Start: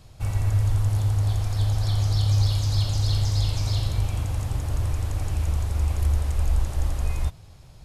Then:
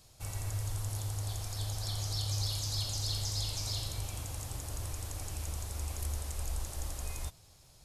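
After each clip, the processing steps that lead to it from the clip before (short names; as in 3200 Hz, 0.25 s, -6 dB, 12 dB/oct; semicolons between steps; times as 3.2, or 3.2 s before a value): tone controls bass -6 dB, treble +11 dB; gain -9 dB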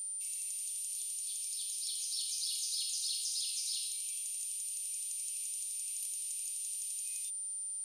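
whine 9100 Hz -37 dBFS; elliptic high-pass 2600 Hz, stop band 50 dB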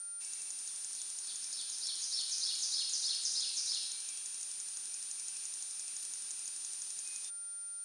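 in parallel at -3.5 dB: companded quantiser 4-bit; on the sum: speaker cabinet 200–8300 Hz, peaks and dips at 540 Hz -7 dB, 1600 Hz +4 dB, 3000 Hz -6 dB, 5900 Hz +3 dB; gain -2.5 dB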